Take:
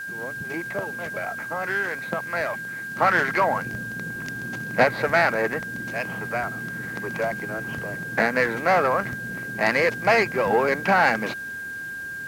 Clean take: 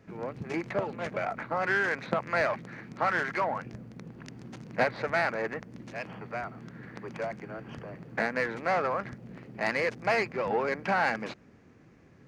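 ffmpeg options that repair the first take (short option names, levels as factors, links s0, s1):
-af "bandreject=f=1600:w=30,afwtdn=0.0032,asetnsamples=n=441:p=0,asendcmd='2.96 volume volume -8dB',volume=1"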